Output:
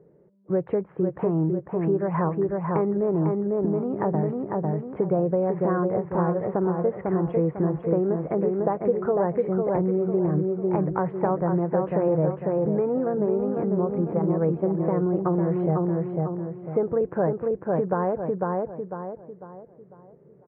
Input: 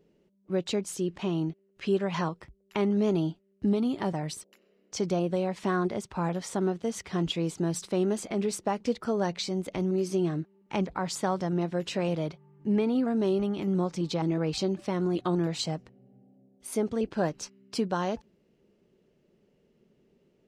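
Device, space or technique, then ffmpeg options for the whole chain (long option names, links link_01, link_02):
bass amplifier: -filter_complex "[0:a]asplit=3[link_01][link_02][link_03];[link_01]afade=type=out:start_time=14.05:duration=0.02[link_04];[link_02]agate=range=-11dB:threshold=-27dB:ratio=16:detection=peak,afade=type=in:start_time=14.05:duration=0.02,afade=type=out:start_time=14.62:duration=0.02[link_05];[link_03]afade=type=in:start_time=14.62:duration=0.02[link_06];[link_04][link_05][link_06]amix=inputs=3:normalize=0,lowpass=frequency=1600:width=0.5412,lowpass=frequency=1600:width=1.3066,asplit=2[link_07][link_08];[link_08]adelay=499,lowpass=frequency=2300:poles=1,volume=-4.5dB,asplit=2[link_09][link_10];[link_10]adelay=499,lowpass=frequency=2300:poles=1,volume=0.38,asplit=2[link_11][link_12];[link_12]adelay=499,lowpass=frequency=2300:poles=1,volume=0.38,asplit=2[link_13][link_14];[link_14]adelay=499,lowpass=frequency=2300:poles=1,volume=0.38,asplit=2[link_15][link_16];[link_16]adelay=499,lowpass=frequency=2300:poles=1,volume=0.38[link_17];[link_07][link_09][link_11][link_13][link_15][link_17]amix=inputs=6:normalize=0,acompressor=threshold=-29dB:ratio=4,highpass=71,equalizer=frequency=140:width_type=q:width=4:gain=8,equalizer=frequency=230:width_type=q:width=4:gain=-9,equalizer=frequency=490:width_type=q:width=4:gain=6,equalizer=frequency=1400:width_type=q:width=4:gain=-3,lowpass=frequency=2200:width=0.5412,lowpass=frequency=2200:width=1.3066,volume=8.5dB"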